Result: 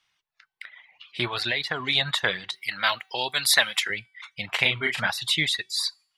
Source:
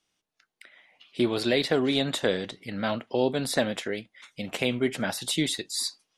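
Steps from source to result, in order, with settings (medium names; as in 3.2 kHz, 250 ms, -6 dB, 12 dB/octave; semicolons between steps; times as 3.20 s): 2.50–3.90 s: RIAA curve recording; de-hum 381.8 Hz, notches 35; reverb removal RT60 0.9 s; ten-band graphic EQ 125 Hz +5 dB, 250 Hz -11 dB, 500 Hz -7 dB, 1 kHz +8 dB, 2 kHz +9 dB, 4 kHz +6 dB, 8 kHz -4 dB; 1.29–1.80 s: compression, threshold -23 dBFS, peak gain reduction 7 dB; 4.55–5.07 s: doubling 35 ms -4 dB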